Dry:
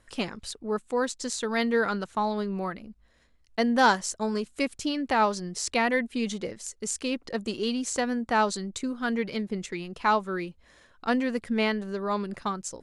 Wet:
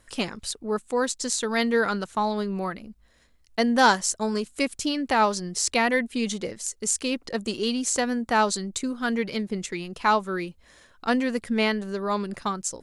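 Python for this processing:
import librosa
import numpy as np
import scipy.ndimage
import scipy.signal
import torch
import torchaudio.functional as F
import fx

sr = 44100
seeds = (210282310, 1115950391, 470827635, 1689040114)

y = fx.high_shelf(x, sr, hz=5700.0, db=7.5)
y = F.gain(torch.from_numpy(y), 2.0).numpy()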